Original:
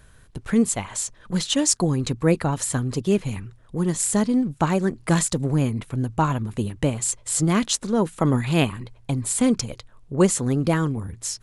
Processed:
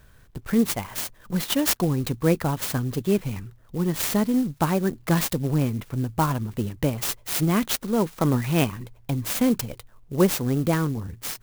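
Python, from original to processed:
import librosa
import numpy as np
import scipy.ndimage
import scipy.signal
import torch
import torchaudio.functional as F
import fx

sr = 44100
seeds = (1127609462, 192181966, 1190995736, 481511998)

y = fx.clock_jitter(x, sr, seeds[0], jitter_ms=0.042)
y = F.gain(torch.from_numpy(y), -1.5).numpy()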